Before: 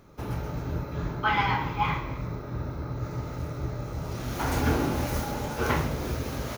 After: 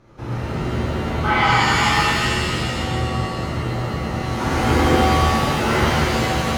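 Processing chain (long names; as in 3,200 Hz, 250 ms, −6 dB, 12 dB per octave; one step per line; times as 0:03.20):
high-frequency loss of the air 60 metres
reverb with rising layers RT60 2.1 s, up +7 semitones, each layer −2 dB, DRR −7 dB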